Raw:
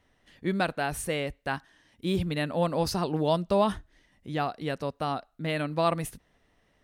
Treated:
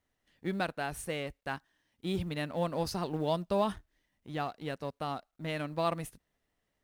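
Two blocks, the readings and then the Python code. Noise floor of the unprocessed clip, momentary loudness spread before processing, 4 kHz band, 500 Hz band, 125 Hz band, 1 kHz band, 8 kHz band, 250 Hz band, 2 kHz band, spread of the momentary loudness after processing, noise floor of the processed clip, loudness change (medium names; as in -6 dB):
-69 dBFS, 10 LU, -5.5 dB, -6.0 dB, -6.0 dB, -5.5 dB, -7.0 dB, -6.0 dB, -6.0 dB, 10 LU, -82 dBFS, -6.0 dB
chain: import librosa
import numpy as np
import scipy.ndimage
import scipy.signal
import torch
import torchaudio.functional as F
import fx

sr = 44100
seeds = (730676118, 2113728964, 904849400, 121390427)

y = fx.law_mismatch(x, sr, coded='A')
y = y * librosa.db_to_amplitude(-5.0)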